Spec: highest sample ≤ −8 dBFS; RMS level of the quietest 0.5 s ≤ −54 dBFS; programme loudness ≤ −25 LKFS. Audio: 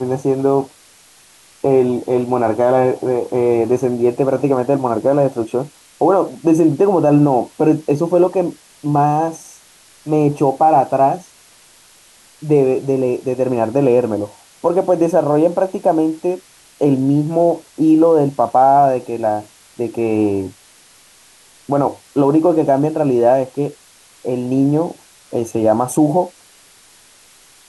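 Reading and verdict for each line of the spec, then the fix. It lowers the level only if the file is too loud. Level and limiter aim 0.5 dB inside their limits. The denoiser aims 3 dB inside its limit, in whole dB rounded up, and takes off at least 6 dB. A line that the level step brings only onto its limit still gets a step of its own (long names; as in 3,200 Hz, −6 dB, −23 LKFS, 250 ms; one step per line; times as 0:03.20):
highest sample −3.5 dBFS: out of spec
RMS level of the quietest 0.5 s −48 dBFS: out of spec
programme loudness −16.0 LKFS: out of spec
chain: level −9.5 dB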